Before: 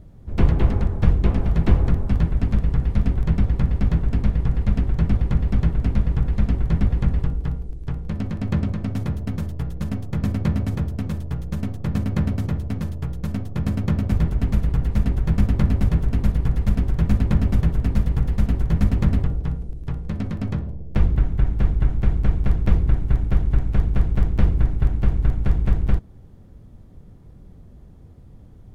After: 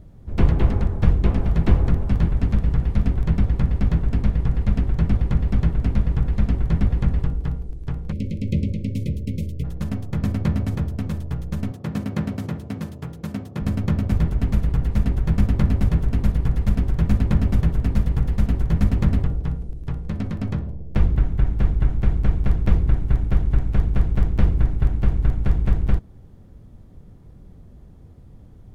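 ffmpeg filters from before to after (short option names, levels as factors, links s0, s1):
-filter_complex "[0:a]asplit=2[s0][s1];[s1]afade=t=in:st=1.36:d=0.01,afade=t=out:st=2.19:d=0.01,aecho=0:1:560|1120|1680:0.188365|0.0659277|0.0230747[s2];[s0][s2]amix=inputs=2:normalize=0,asplit=3[s3][s4][s5];[s3]afade=t=out:st=8.11:d=0.02[s6];[s4]asuperstop=centerf=1100:order=20:qfactor=0.74,afade=t=in:st=8.11:d=0.02,afade=t=out:st=9.63:d=0.02[s7];[s5]afade=t=in:st=9.63:d=0.02[s8];[s6][s7][s8]amix=inputs=3:normalize=0,asettb=1/sr,asplit=3[s9][s10][s11];[s9]atrim=end=11.714[s12];[s10]atrim=start=11.71:end=13.62,asetpts=PTS-STARTPTS,afade=t=in:d=0.004:c=qsin,afade=t=out:st=1.906:d=0.004:c=qsin,highpass=140[s13];[s11]atrim=start=13.616[s14];[s12][s13]acrossfade=d=0.004:c1=hsin:c2=qsin[s15];[s15][s14]acrossfade=d=0.004:c1=qsin:c2=hsin"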